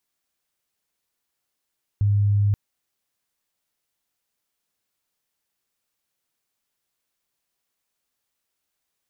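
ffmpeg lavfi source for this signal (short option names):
-f lavfi -i "sine=f=102:d=0.53:r=44100,volume=2.06dB"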